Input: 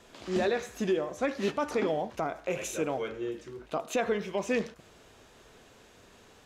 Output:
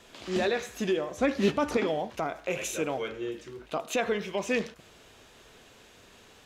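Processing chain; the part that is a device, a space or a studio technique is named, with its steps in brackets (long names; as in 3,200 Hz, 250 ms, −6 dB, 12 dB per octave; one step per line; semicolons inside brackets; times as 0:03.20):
presence and air boost (parametric band 3,000 Hz +4.5 dB 1.5 octaves; high-shelf EQ 10,000 Hz +5.5 dB)
0:01.18–0:01.77: low-shelf EQ 340 Hz +10 dB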